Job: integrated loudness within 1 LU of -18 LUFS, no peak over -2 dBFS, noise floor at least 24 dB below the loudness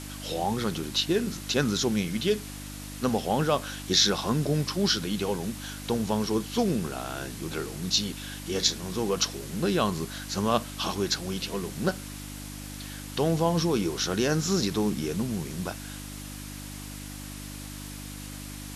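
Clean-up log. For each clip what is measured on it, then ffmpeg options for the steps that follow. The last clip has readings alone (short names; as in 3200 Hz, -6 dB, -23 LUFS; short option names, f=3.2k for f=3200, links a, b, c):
hum 50 Hz; harmonics up to 300 Hz; hum level -39 dBFS; noise floor -40 dBFS; noise floor target -52 dBFS; loudness -28.0 LUFS; peak -7.5 dBFS; loudness target -18.0 LUFS
-> -af "bandreject=f=50:t=h:w=4,bandreject=f=100:t=h:w=4,bandreject=f=150:t=h:w=4,bandreject=f=200:t=h:w=4,bandreject=f=250:t=h:w=4,bandreject=f=300:t=h:w=4"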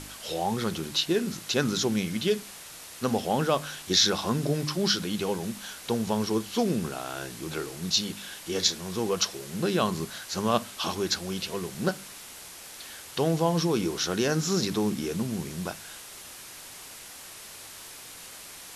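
hum none; noise floor -45 dBFS; noise floor target -52 dBFS
-> -af "afftdn=nr=7:nf=-45"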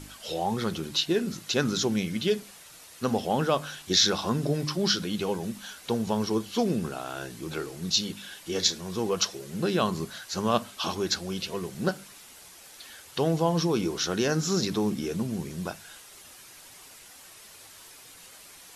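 noise floor -50 dBFS; noise floor target -52 dBFS
-> -af "afftdn=nr=6:nf=-50"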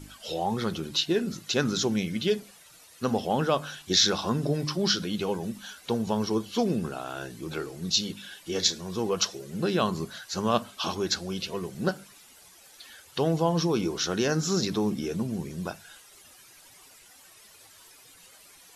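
noise floor -54 dBFS; loudness -28.0 LUFS; peak -7.5 dBFS; loudness target -18.0 LUFS
-> -af "volume=10dB,alimiter=limit=-2dB:level=0:latency=1"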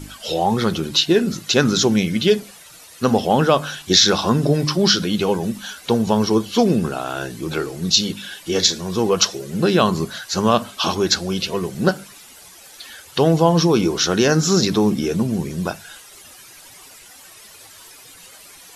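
loudness -18.5 LUFS; peak -2.0 dBFS; noise floor -44 dBFS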